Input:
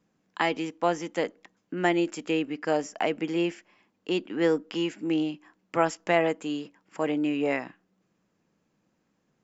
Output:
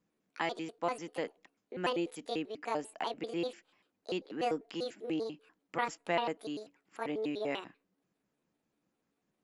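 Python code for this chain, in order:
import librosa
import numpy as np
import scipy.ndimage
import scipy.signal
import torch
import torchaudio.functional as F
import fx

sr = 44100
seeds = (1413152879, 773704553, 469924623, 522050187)

y = fx.pitch_trill(x, sr, semitones=6.5, every_ms=98)
y = y * librosa.db_to_amplitude(-8.5)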